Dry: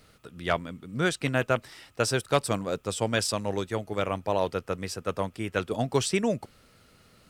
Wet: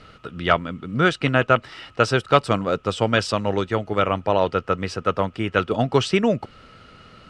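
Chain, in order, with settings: LPF 3900 Hz 12 dB/oct; in parallel at -2.5 dB: compressor, threshold -37 dBFS, peak gain reduction 18 dB; on the sum: small resonant body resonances 1300/2900 Hz, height 8 dB, ringing for 20 ms; gain +6 dB; MP3 80 kbps 48000 Hz

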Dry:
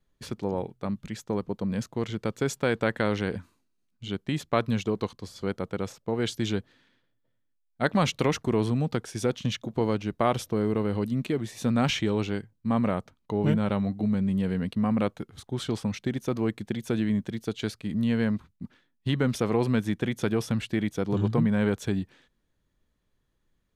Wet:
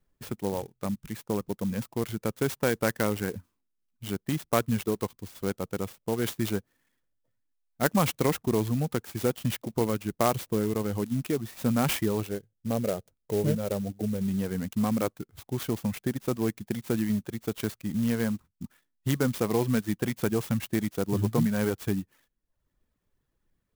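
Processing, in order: reverb removal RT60 0.7 s; 12.2–14.21 graphic EQ 250/500/1000/2000 Hz -6/+8/-11/-5 dB; clock jitter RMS 0.057 ms

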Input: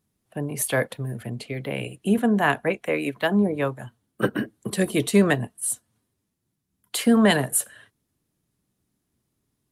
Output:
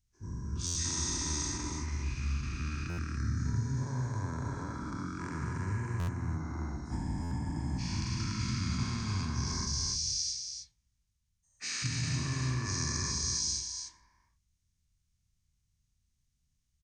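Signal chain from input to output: spectral dilation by 0.48 s; compressor, threshold -17 dBFS, peak gain reduction 9.5 dB; passive tone stack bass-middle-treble 10-0-1; notches 50/100/150/200/250/300/350 Hz; speed mistake 78 rpm record played at 45 rpm; high shelf 8900 Hz +8.5 dB; loudspeakers at several distances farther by 24 m -9 dB, 98 m -6 dB; stuck buffer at 0.66/2.89/5.99/7.22, samples 512, times 7; gain +5.5 dB

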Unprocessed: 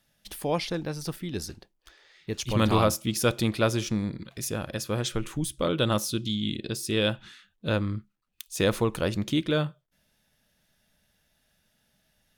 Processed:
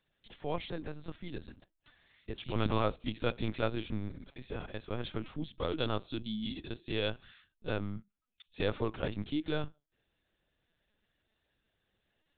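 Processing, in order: LPC vocoder at 8 kHz pitch kept; gain -8 dB

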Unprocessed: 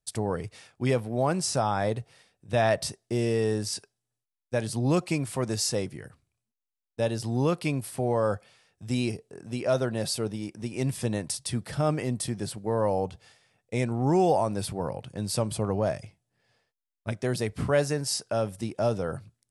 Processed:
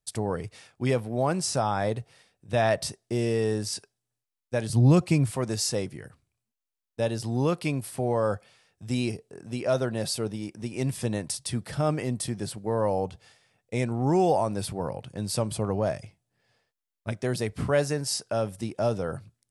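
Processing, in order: 4.69–5.31 bell 73 Hz +13.5 dB 2.5 oct

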